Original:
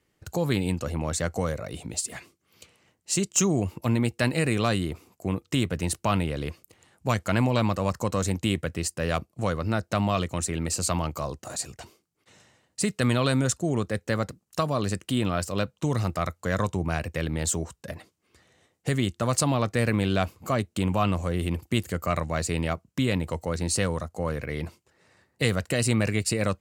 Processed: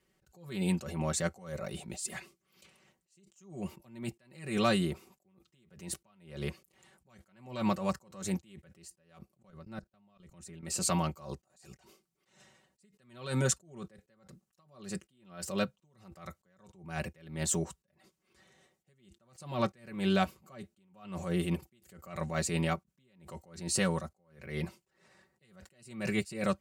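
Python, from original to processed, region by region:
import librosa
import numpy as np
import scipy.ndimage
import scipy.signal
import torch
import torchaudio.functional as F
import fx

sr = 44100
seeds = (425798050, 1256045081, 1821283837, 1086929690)

y = fx.chain(x, sr, fx.low_shelf(hz=180.0, db=8.0),
    fx.level_steps(step_db=22), at=(9.42, 10.63))
y = y + 0.8 * np.pad(y, (int(5.3 * sr / 1000.0), 0))[:len(y)]
y = fx.attack_slew(y, sr, db_per_s=110.0)
y = y * librosa.db_to_amplitude(-4.5)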